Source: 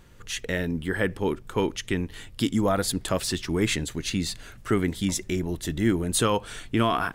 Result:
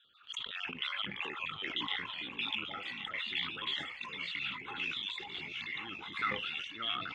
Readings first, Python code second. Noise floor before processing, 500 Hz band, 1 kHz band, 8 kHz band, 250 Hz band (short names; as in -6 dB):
-47 dBFS, -24.0 dB, -11.0 dB, under -30 dB, -24.0 dB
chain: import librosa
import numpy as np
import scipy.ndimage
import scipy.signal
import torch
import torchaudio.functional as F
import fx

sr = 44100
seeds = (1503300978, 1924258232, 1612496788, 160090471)

y = fx.spec_dropout(x, sr, seeds[0], share_pct=39)
y = fx.high_shelf(y, sr, hz=2700.0, db=11.5)
y = fx.rider(y, sr, range_db=5, speed_s=0.5)
y = fx.transient(y, sr, attack_db=-5, sustain_db=10)
y = fx.double_bandpass(y, sr, hz=2100.0, octaves=1.4)
y = fx.fixed_phaser(y, sr, hz=2400.0, stages=4)
y = fx.echo_pitch(y, sr, ms=170, semitones=-4, count=2, db_per_echo=-3.0)
y = fx.air_absorb(y, sr, metres=190.0)
y = y + 10.0 ** (-10.0 / 20.0) * np.pad(y, (int(1093 * sr / 1000.0), 0))[:len(y)]
y = fx.sustainer(y, sr, db_per_s=67.0)
y = y * 10.0 ** (2.0 / 20.0)